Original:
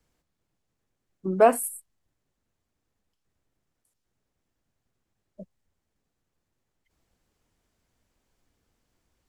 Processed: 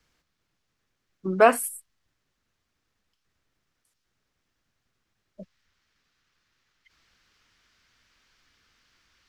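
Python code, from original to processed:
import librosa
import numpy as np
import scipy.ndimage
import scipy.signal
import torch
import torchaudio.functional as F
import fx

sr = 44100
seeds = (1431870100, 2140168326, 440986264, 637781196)

y = fx.band_shelf(x, sr, hz=2600.0, db=fx.steps((0.0, 8.0), (5.42, 15.5)), octaves=2.7)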